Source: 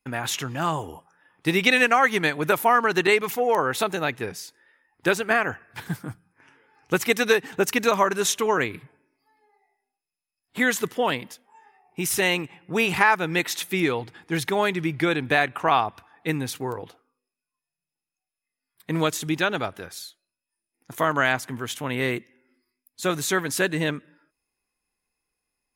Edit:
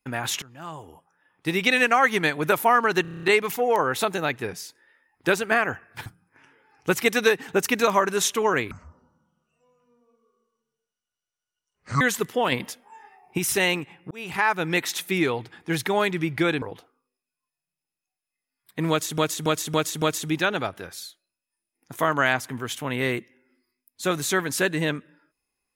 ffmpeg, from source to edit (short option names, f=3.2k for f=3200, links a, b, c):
-filter_complex "[0:a]asplit=20[a][b][c][d][e][f][g][h][i][j][k][l][m][n][o][p][q][r][s][t];[a]atrim=end=0.42,asetpts=PTS-STARTPTS,afade=t=out:st=0.416:d=0.004:c=hsin:silence=0.1[u];[b]atrim=start=0.42:end=3.052,asetpts=PTS-STARTPTS,afade=t=in:d=1.63:silence=0.1[v];[c]atrim=start=3.018:end=3.052[w];[d]atrim=start=3.018:end=3.052[x];[e]atrim=start=3.018:end=3.052[y];[f]atrim=start=3.018:end=3.052[z];[g]atrim=start=3.018:end=3.052[aa];[h]atrim=start=3.018:end=3.052[ab];[i]atrim=start=3.018:end=5.852[ac];[j]atrim=start=6.098:end=8.754[ad];[k]atrim=start=8.75:end=10.63,asetpts=PTS-STARTPTS,asetrate=25137,aresample=44100[ae];[l]atrim=start=10.626:end=11.142[af];[m]atrim=start=11.138:end=12.002,asetpts=PTS-STARTPTS,volume=6dB[ag];[n]atrim=start=11.998:end=12.73,asetpts=PTS-STARTPTS,afade=t=out:st=0.728:d=0.004:c=hsin[ah];[o]atrim=start=12.73:end=15.242,asetpts=PTS-STARTPTS,afade=t=in:d=0.52[ai];[p]atrim=start=16.728:end=19.292[aj];[q]atrim=start=19.008:end=19.292[ak];[r]atrim=start=19.008:end=19.292[al];[s]atrim=start=19.008:end=19.292[am];[t]atrim=start=19.008[an];[u][v]concat=n=2:v=0:a=1[ao];[ao][w]acrossfade=d=0.004:c1=hsin:c2=hsin[ap];[ap][x]acrossfade=d=0.004:c1=hsin:c2=hsin[aq];[aq][y]acrossfade=d=0.004:c1=hsin:c2=hsin[ar];[ar][z]acrossfade=d=0.004:c1=hsin:c2=hsin[as];[as][aa]acrossfade=d=0.004:c1=hsin:c2=hsin[at];[at][ab]acrossfade=d=0.004:c1=hsin:c2=hsin[au];[au][ac]acrossfade=d=0.004:c1=hsin:c2=hsin[av];[av][ad]acrossfade=d=0.004:c1=hsin:c2=hsin[aw];[aw][ae]acrossfade=d=0.004:c1=hsin:c2=hsin[ax];[ax][af]acrossfade=d=0.004:c1=hsin:c2=hsin[ay];[ay][ag]acrossfade=d=0.004:c1=hsin:c2=hsin[az];[ah][ai]concat=n=2:v=0:a=1[ba];[az][ba]acrossfade=d=0.004:c1=hsin:c2=hsin[bb];[bb][aj]acrossfade=d=0.004:c1=hsin:c2=hsin[bc];[bc][ak]acrossfade=d=0.004:c1=hsin:c2=hsin[bd];[bd][al]acrossfade=d=0.004:c1=hsin:c2=hsin[be];[be][am]acrossfade=d=0.004:c1=hsin:c2=hsin[bf];[bf][an]acrossfade=d=0.004:c1=hsin:c2=hsin"